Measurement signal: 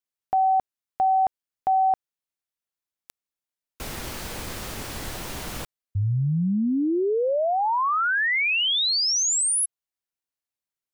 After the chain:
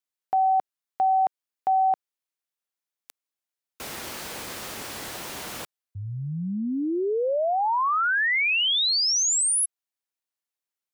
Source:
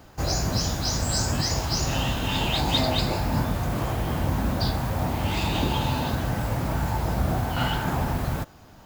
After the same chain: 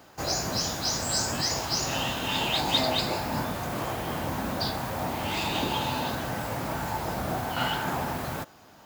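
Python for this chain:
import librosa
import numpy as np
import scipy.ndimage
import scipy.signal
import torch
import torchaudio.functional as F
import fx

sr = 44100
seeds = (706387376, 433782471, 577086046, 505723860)

y = fx.highpass(x, sr, hz=330.0, slope=6)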